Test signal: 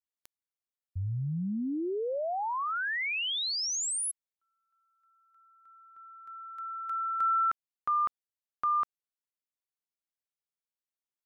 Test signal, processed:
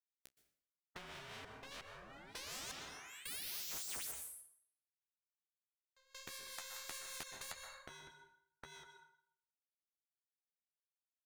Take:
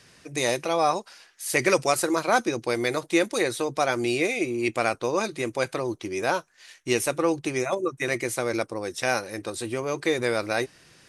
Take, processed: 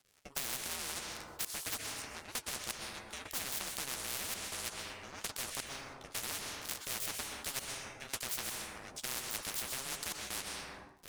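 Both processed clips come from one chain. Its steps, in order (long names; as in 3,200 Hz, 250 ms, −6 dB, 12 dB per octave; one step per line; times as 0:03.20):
high-pass filter 130 Hz 6 dB per octave
ring modulation 270 Hz
downward compressor 3 to 1, threshold −47 dBFS
dead-zone distortion −49.5 dBFS
rotating-speaker cabinet horn 5 Hz
flanger 1.7 Hz, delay 8.4 ms, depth 7.2 ms, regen −33%
gate pattern "..xxxxxx.x...xx." 83 BPM −24 dB
dense smooth reverb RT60 0.65 s, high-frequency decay 0.85×, pre-delay 110 ms, DRR 11 dB
every bin compressed towards the loudest bin 10 to 1
level +18 dB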